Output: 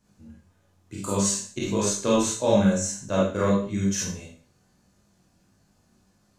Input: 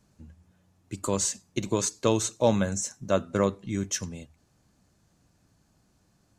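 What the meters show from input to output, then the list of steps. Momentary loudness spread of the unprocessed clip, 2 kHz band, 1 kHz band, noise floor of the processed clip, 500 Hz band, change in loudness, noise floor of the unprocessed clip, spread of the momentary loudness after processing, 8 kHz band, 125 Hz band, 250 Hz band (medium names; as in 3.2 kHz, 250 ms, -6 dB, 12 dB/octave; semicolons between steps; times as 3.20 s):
10 LU, +2.5 dB, +2.5 dB, -65 dBFS, +2.5 dB, +3.5 dB, -67 dBFS, 10 LU, +2.5 dB, +3.5 dB, +5.5 dB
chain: Schroeder reverb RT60 0.44 s, combs from 31 ms, DRR -4.5 dB; chorus 1.6 Hz, delay 19.5 ms, depth 2.4 ms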